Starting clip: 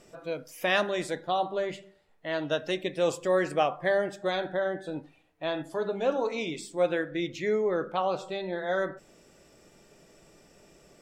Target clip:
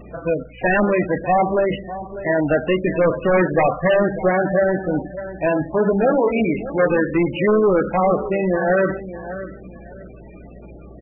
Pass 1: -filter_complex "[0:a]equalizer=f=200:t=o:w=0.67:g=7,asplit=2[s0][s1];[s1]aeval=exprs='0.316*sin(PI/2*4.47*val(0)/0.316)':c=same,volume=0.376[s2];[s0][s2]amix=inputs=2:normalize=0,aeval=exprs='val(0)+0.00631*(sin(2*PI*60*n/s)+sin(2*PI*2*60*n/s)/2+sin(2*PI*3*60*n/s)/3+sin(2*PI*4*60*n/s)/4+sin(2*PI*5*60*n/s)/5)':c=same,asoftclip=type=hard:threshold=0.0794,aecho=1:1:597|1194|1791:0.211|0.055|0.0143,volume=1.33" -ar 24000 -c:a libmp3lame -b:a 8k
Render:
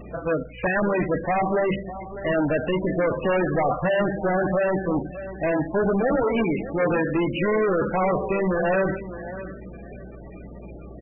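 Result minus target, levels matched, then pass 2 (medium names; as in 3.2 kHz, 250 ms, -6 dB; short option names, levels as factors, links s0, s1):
hard clipper: distortion +39 dB
-filter_complex "[0:a]equalizer=f=200:t=o:w=0.67:g=7,asplit=2[s0][s1];[s1]aeval=exprs='0.316*sin(PI/2*4.47*val(0)/0.316)':c=same,volume=0.376[s2];[s0][s2]amix=inputs=2:normalize=0,aeval=exprs='val(0)+0.00631*(sin(2*PI*60*n/s)+sin(2*PI*2*60*n/s)/2+sin(2*PI*3*60*n/s)/3+sin(2*PI*4*60*n/s)/4+sin(2*PI*5*60*n/s)/5)':c=same,asoftclip=type=hard:threshold=0.211,aecho=1:1:597|1194|1791:0.211|0.055|0.0143,volume=1.33" -ar 24000 -c:a libmp3lame -b:a 8k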